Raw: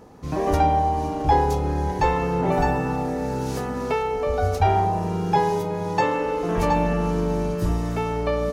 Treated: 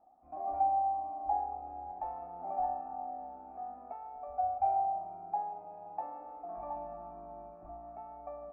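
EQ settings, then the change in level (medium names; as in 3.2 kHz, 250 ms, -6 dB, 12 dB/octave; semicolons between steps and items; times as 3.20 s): cascade formant filter a; static phaser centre 680 Hz, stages 8; -2.0 dB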